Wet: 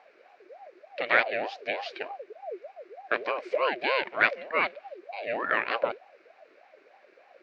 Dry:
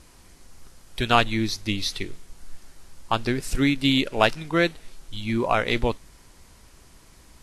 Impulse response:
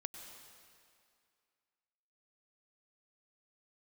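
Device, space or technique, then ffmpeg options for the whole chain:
voice changer toy: -af "aeval=exprs='val(0)*sin(2*PI*580*n/s+580*0.4/3.3*sin(2*PI*3.3*n/s))':channel_layout=same,highpass=460,equalizer=frequency=580:width_type=q:width=4:gain=6,equalizer=frequency=880:width_type=q:width=4:gain=-7,equalizer=frequency=1600:width_type=q:width=4:gain=5,equalizer=frequency=2300:width_type=q:width=4:gain=8,equalizer=frequency=3300:width_type=q:width=4:gain=-8,lowpass=frequency=3600:width=0.5412,lowpass=frequency=3600:width=1.3066,volume=-2.5dB"

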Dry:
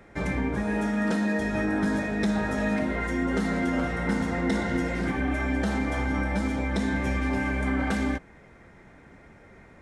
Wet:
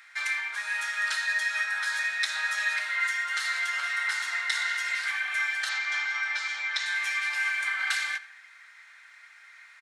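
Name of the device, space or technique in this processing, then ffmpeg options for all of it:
headphones lying on a table: -filter_complex "[0:a]highpass=frequency=1500:width=0.5412,highpass=frequency=1500:width=1.3066,equalizer=frequency=4200:width_type=o:width=0.36:gain=6,asettb=1/sr,asplit=3[link_01][link_02][link_03];[link_01]atrim=end=5.694[link_04];[link_02]atrim=start=5.69:end=6.86,asetpts=PTS-STARTPTS,afade=type=in:duration=0.004:curve=qsin,afade=type=out:start_time=1.166:duration=0.004:curve=qsin,lowpass=frequency=6700:width=0.5412,lowpass=frequency=6700:width=1.3066[link_05];[link_03]atrim=start=6.856[link_06];[link_04][link_05]acrossfade=duration=0.004:curve1=hsin:curve2=qsin[link_07];[link_07][link_06]acrossfade=duration=0.004:curve1=qsin:curve2=hsin,asplit=2[link_08][link_09];[link_09]adelay=87,lowpass=frequency=4800:poles=1,volume=-17dB,asplit=2[link_10][link_11];[link_11]adelay=87,lowpass=frequency=4800:poles=1,volume=0.52,asplit=2[link_12][link_13];[link_13]adelay=87,lowpass=frequency=4800:poles=1,volume=0.52,asplit=2[link_14][link_15];[link_15]adelay=87,lowpass=frequency=4800:poles=1,volume=0.52,asplit=2[link_16][link_17];[link_17]adelay=87,lowpass=frequency=4800:poles=1,volume=0.52[link_18];[link_08][link_10][link_12][link_14][link_16][link_18]amix=inputs=6:normalize=0,volume=7.5dB"

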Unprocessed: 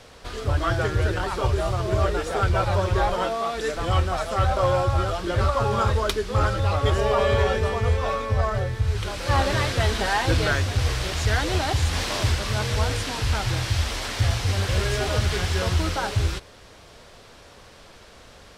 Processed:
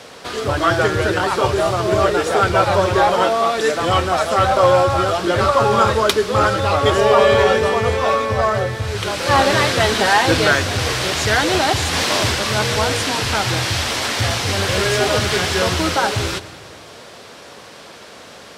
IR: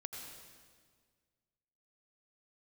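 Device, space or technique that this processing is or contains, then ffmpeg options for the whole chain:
saturated reverb return: -filter_complex "[0:a]highpass=170,asplit=2[link_01][link_02];[1:a]atrim=start_sample=2205[link_03];[link_02][link_03]afir=irnorm=-1:irlink=0,asoftclip=type=tanh:threshold=-23dB,volume=-8.5dB[link_04];[link_01][link_04]amix=inputs=2:normalize=0,volume=8dB"

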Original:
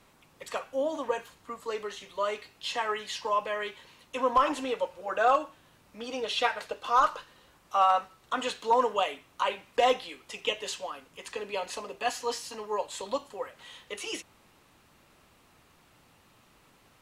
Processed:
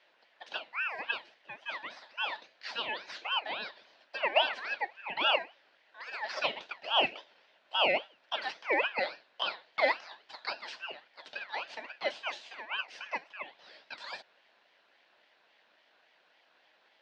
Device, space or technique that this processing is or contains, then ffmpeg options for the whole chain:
voice changer toy: -af "aeval=exprs='val(0)*sin(2*PI*1700*n/s+1700*0.25/3.6*sin(2*PI*3.6*n/s))':channel_layout=same,highpass=400,equalizer=frequency=410:width_type=q:width=4:gain=-3,equalizer=frequency=610:width_type=q:width=4:gain=5,equalizer=frequency=1200:width_type=q:width=4:gain=-8,equalizer=frequency=2200:width_type=q:width=4:gain=-4,lowpass=frequency=4200:width=0.5412,lowpass=frequency=4200:width=1.3066"

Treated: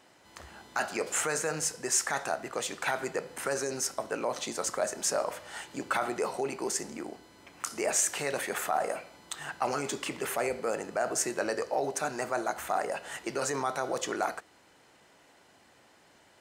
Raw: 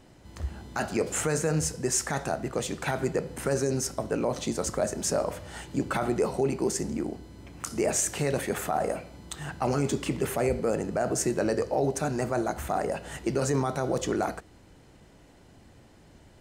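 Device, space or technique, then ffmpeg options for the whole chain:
filter by subtraction: -filter_complex "[0:a]asplit=2[link_01][link_02];[link_02]lowpass=1200,volume=-1[link_03];[link_01][link_03]amix=inputs=2:normalize=0"

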